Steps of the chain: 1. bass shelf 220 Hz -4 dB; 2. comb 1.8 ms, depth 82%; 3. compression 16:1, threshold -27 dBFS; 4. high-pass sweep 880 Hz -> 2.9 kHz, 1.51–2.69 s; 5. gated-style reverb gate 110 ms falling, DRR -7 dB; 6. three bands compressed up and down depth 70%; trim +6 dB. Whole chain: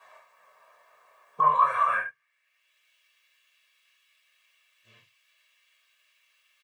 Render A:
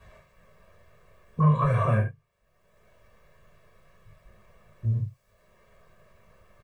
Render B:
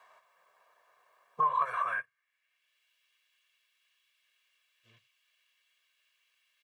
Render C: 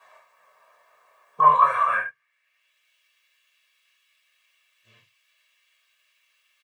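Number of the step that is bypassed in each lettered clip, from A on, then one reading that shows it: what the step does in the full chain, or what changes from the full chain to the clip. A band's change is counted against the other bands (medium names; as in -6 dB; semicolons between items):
4, crest factor change -4.0 dB; 5, momentary loudness spread change -3 LU; 3, mean gain reduction 2.0 dB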